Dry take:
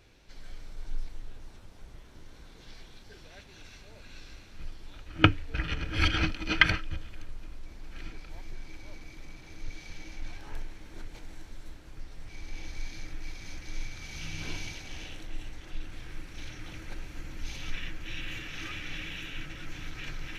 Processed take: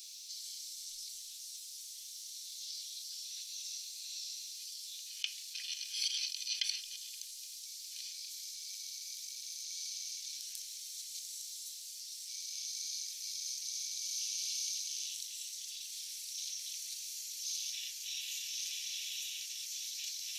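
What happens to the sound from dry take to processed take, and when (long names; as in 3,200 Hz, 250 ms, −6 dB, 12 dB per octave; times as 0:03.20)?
0:04.57–0:06.75: high-pass filter 1,000 Hz
whole clip: inverse Chebyshev high-pass filter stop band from 1,100 Hz, stop band 70 dB; envelope flattener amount 50%; level +6.5 dB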